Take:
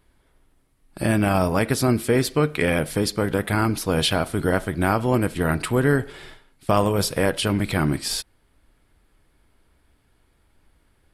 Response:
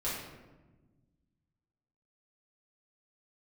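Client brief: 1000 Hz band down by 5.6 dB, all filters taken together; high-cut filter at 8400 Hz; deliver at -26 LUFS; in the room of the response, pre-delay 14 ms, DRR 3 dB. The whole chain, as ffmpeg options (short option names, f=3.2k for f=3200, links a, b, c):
-filter_complex "[0:a]lowpass=8.4k,equalizer=f=1k:t=o:g=-8,asplit=2[a][b];[1:a]atrim=start_sample=2205,adelay=14[c];[b][c]afir=irnorm=-1:irlink=0,volume=-8dB[d];[a][d]amix=inputs=2:normalize=0,volume=-5dB"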